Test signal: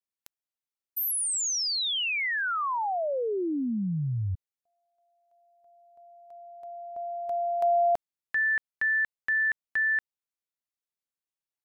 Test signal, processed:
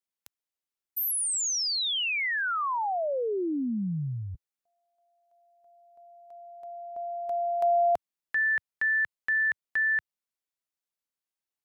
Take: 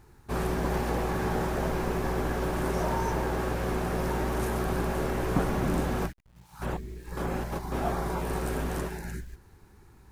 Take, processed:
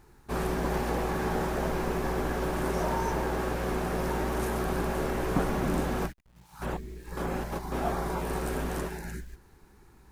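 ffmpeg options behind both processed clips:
ffmpeg -i in.wav -af "equalizer=frequency=95:width_type=o:width=0.74:gain=-7.5" out.wav

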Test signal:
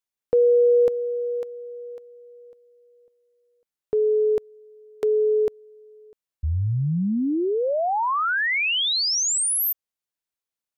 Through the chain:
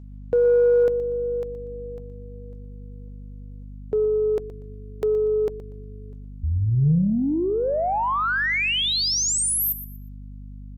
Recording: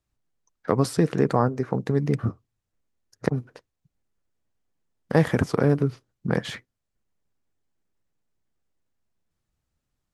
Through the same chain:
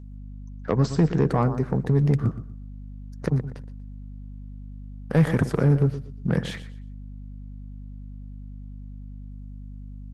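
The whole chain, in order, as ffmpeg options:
ffmpeg -i in.wav -af "adynamicequalizer=threshold=0.0141:dfrequency=150:dqfactor=2.3:tfrequency=150:tqfactor=2.3:attack=5:release=100:ratio=0.45:range=3.5:mode=boostabove:tftype=bell,aeval=exprs='val(0)+0.0112*(sin(2*PI*50*n/s)+sin(2*PI*2*50*n/s)/2+sin(2*PI*3*50*n/s)/3+sin(2*PI*4*50*n/s)/4+sin(2*PI*5*50*n/s)/5)':channel_layout=same,aecho=1:1:120|240|360:0.2|0.0479|0.0115,asoftclip=type=tanh:threshold=-10.5dB" -ar 48000 -c:a libopus -b:a 24k out.opus

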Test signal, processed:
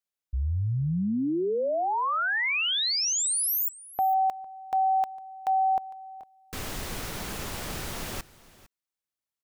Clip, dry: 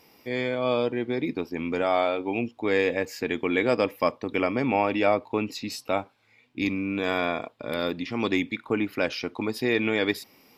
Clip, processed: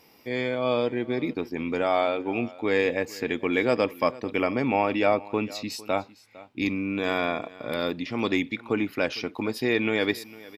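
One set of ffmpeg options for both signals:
ffmpeg -i in.wav -af "aecho=1:1:455:0.1" out.wav

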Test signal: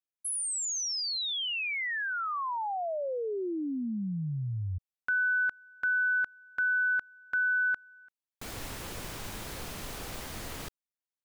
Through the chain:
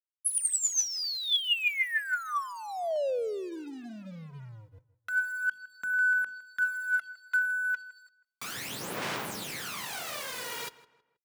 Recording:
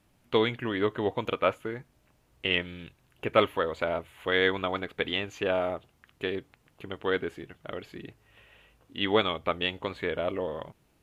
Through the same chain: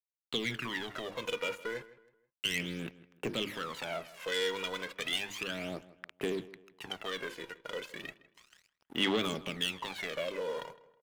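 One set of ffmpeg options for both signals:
ffmpeg -i in.wav -filter_complex "[0:a]highpass=frequency=140:width=0.5412,highpass=frequency=140:width=1.3066,highshelf=frequency=3700:gain=-7,bandreject=frequency=50:width_type=h:width=6,bandreject=frequency=100:width_type=h:width=6,bandreject=frequency=150:width_type=h:width=6,bandreject=frequency=200:width_type=h:width=6,bandreject=frequency=250:width_type=h:width=6,bandreject=frequency=300:width_type=h:width=6,bandreject=frequency=350:width_type=h:width=6,acrossover=split=350|2700[link_01][link_02][link_03];[link_02]acompressor=threshold=-38dB:ratio=10:attack=0.15:release=67:knee=2.83:detection=peak[link_04];[link_01][link_04][link_03]amix=inputs=3:normalize=0,aeval=exprs='sgn(val(0))*max(abs(val(0))-0.00178,0)':channel_layout=same,acompressor=threshold=-37dB:ratio=6:attack=23:release=60:knee=6:detection=peak,asoftclip=type=tanh:threshold=-35dB,tiltshelf=frequency=810:gain=-5.5,aphaser=in_gain=1:out_gain=1:delay=2.1:decay=0.68:speed=0.33:type=sinusoidal,asplit=2[link_05][link_06];[link_06]adelay=160,lowpass=frequency=2800:poles=1,volume=-17.5dB,asplit=2[link_07][link_08];[link_08]adelay=160,lowpass=frequency=2800:poles=1,volume=0.37,asplit=2[link_09][link_10];[link_10]adelay=160,lowpass=frequency=2800:poles=1,volume=0.37[link_11];[link_05][link_07][link_09][link_11]amix=inputs=4:normalize=0,volume=4.5dB" out.wav

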